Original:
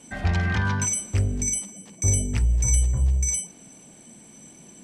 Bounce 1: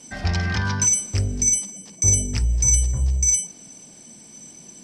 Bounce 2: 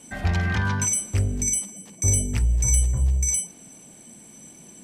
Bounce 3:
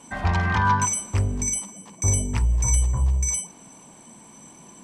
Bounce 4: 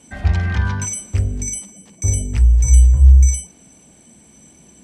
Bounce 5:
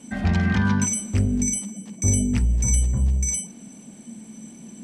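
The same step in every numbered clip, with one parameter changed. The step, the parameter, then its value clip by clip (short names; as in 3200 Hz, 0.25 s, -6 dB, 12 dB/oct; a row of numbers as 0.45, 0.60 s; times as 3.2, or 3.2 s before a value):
bell, frequency: 5200, 14000, 1000, 67, 220 Hz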